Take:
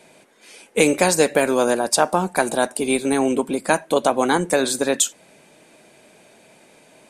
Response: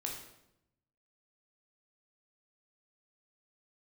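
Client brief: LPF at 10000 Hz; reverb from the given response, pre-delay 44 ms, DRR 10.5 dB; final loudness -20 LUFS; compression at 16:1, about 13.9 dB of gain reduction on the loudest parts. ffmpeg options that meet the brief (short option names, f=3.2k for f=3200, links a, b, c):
-filter_complex "[0:a]lowpass=10k,acompressor=threshold=-25dB:ratio=16,asplit=2[a][b];[1:a]atrim=start_sample=2205,adelay=44[c];[b][c]afir=irnorm=-1:irlink=0,volume=-11dB[d];[a][d]amix=inputs=2:normalize=0,volume=10dB"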